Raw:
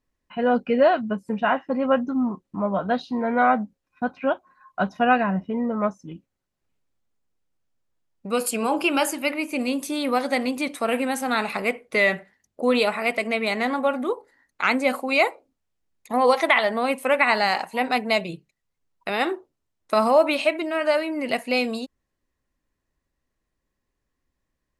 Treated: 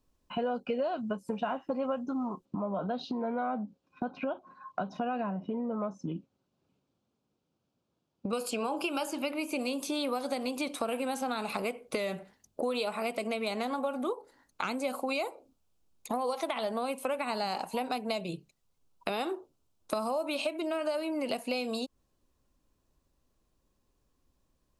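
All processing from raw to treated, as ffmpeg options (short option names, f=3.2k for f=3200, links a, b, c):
-filter_complex "[0:a]asettb=1/sr,asplit=3[a][b][c];[a]atrim=end=2.454[d];[b]atrim=start=2.45:end=8.33,asetpts=PTS-STARTPTS,afade=t=in:d=0.004:c=qsin,afade=t=out:st=5.876:d=0.004:c=qsin,lowshelf=f=370:g=9.5,acompressor=threshold=-27dB:ratio=3:attack=3.2:release=140:knee=1:detection=peak,highpass=160,lowpass=5k[e];[c]atrim=start=8.326[f];[d][e]acrossfade=d=0.004:c1=hsin:c2=qsin[g];[g][f]acrossfade=d=0.004:c1=qsin:c2=hsin,acrossover=split=420|5800[h][i][j];[h]acompressor=threshold=-36dB:ratio=4[k];[i]acompressor=threshold=-27dB:ratio=4[l];[j]acompressor=threshold=-46dB:ratio=4[m];[k][l][m]amix=inputs=3:normalize=0,equalizer=f=1.9k:t=o:w=0.48:g=-13.5,acompressor=threshold=-38dB:ratio=2.5,volume=5dB"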